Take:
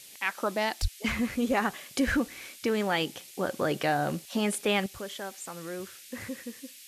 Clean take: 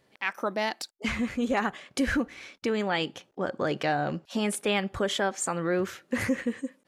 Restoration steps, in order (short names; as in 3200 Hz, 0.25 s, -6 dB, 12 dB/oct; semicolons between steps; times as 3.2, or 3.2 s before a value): de-plosive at 0.81; noise print and reduce 14 dB; gain correction +11 dB, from 4.86